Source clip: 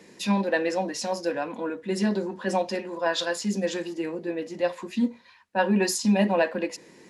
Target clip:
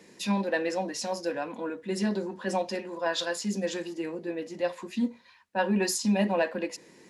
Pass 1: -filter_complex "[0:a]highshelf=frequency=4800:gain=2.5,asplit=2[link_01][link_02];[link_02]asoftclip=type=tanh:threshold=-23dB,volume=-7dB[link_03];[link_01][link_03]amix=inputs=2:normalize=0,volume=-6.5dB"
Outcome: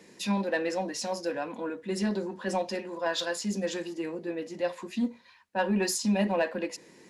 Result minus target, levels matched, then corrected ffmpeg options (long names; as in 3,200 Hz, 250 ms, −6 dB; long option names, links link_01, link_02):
soft clipping: distortion +11 dB
-filter_complex "[0:a]highshelf=frequency=4800:gain=2.5,asplit=2[link_01][link_02];[link_02]asoftclip=type=tanh:threshold=-14dB,volume=-7dB[link_03];[link_01][link_03]amix=inputs=2:normalize=0,volume=-6.5dB"